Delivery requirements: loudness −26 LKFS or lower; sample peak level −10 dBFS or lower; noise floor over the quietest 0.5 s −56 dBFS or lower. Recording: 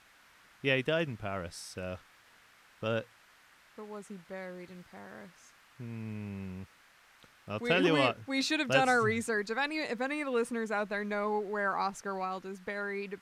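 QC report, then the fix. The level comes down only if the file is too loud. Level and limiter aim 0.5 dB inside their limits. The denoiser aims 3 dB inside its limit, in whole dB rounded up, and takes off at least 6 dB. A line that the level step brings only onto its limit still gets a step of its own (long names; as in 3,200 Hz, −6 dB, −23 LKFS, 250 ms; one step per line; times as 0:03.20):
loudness −32.5 LKFS: in spec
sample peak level −12.0 dBFS: in spec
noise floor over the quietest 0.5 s −62 dBFS: in spec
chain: no processing needed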